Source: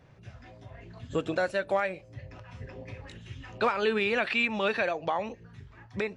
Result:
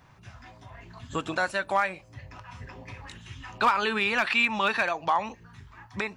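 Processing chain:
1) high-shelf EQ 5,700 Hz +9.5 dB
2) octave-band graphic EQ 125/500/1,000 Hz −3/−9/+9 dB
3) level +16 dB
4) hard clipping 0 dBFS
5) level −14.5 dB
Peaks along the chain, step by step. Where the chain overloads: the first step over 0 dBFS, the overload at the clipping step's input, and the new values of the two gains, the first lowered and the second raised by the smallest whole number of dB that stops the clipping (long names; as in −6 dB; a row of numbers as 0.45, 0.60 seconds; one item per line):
−15.5, −10.5, +5.5, 0.0, −14.5 dBFS
step 3, 5.5 dB
step 3 +10 dB, step 5 −8.5 dB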